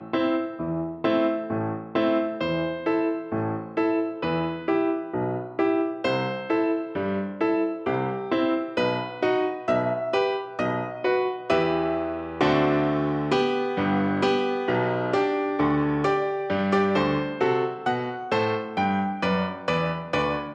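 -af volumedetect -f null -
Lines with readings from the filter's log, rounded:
mean_volume: -24.7 dB
max_volume: -7.6 dB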